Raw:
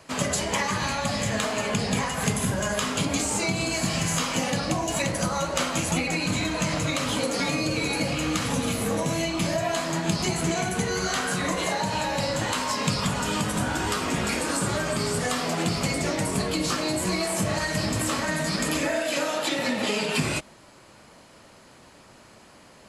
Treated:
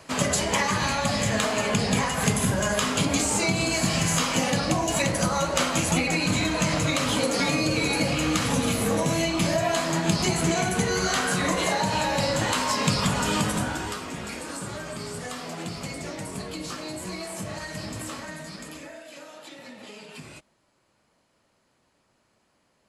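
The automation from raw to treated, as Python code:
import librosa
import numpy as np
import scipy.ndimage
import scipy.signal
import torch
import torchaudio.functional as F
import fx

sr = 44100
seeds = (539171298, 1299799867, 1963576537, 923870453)

y = fx.gain(x, sr, db=fx.line((13.45, 2.0), (14.08, -8.5), (18.05, -8.5), (19.04, -17.5)))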